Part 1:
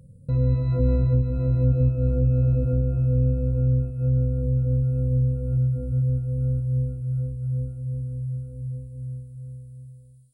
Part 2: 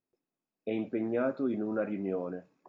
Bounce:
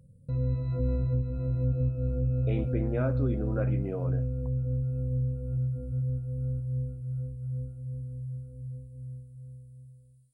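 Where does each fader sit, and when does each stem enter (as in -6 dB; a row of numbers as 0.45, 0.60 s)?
-7.5, -1.5 dB; 0.00, 1.80 s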